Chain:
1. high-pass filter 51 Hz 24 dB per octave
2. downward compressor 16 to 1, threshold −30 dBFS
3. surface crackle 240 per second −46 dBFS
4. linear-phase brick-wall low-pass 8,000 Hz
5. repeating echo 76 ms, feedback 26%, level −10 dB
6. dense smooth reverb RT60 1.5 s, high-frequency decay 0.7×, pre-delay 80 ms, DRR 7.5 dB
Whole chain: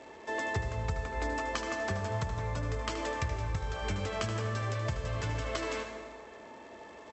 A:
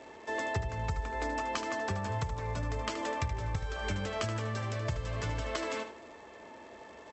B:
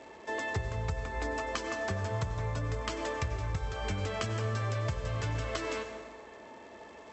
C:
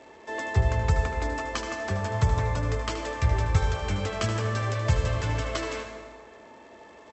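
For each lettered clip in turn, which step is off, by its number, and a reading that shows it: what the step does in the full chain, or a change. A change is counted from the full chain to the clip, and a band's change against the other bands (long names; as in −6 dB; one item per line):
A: 6, echo-to-direct ratio −5.0 dB to −9.5 dB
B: 5, echo-to-direct ratio −5.0 dB to −7.5 dB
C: 2, average gain reduction 4.5 dB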